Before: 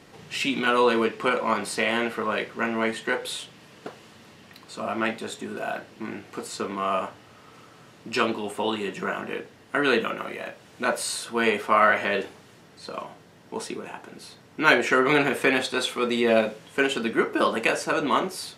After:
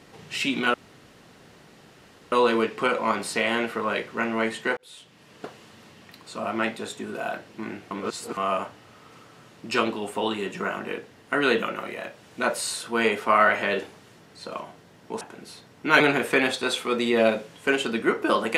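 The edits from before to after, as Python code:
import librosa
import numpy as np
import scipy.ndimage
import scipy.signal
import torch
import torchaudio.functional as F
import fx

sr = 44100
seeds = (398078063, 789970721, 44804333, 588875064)

y = fx.edit(x, sr, fx.insert_room_tone(at_s=0.74, length_s=1.58),
    fx.fade_in_span(start_s=3.19, length_s=0.68),
    fx.reverse_span(start_s=6.33, length_s=0.46),
    fx.cut(start_s=13.63, length_s=0.32),
    fx.cut(start_s=14.74, length_s=0.37), tone=tone)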